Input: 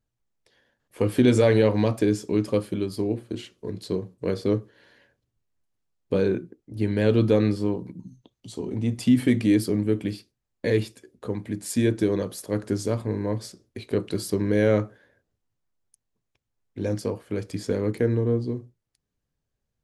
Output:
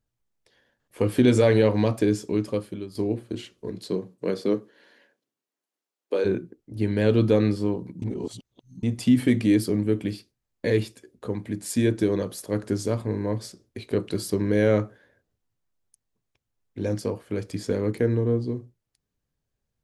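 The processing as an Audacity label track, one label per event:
2.190000	2.950000	fade out, to −10.5 dB
3.690000	6.240000	high-pass filter 120 Hz → 340 Hz 24 dB per octave
8.020000	8.830000	reverse

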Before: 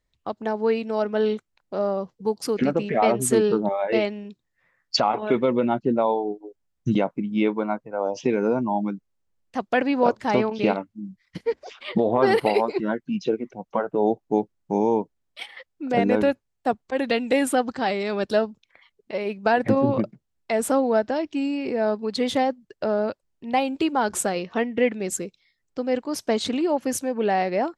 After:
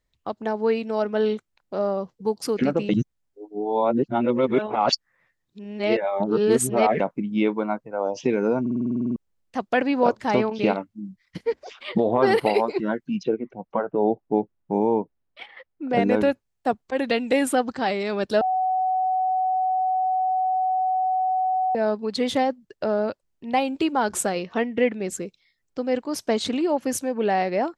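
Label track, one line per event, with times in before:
2.890000	7.000000	reverse
8.610000	8.610000	stutter in place 0.05 s, 11 plays
13.230000	15.930000	Bessel low-pass filter 2,100 Hz
18.410000	21.750000	beep over 748 Hz −19.5 dBFS
24.840000	25.260000	high-shelf EQ 5,100 Hz −7 dB

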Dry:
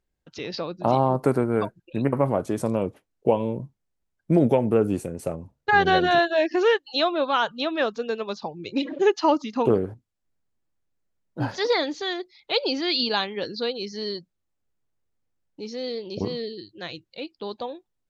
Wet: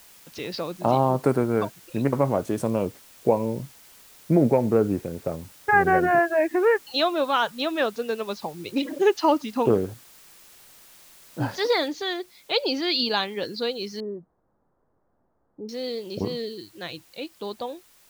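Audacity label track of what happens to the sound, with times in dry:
2.850000	6.870000	Butterworth low-pass 2,400 Hz 72 dB per octave
11.880000	11.880000	noise floor change −51 dB −57 dB
14.000000	15.690000	Gaussian smoothing sigma 8.9 samples

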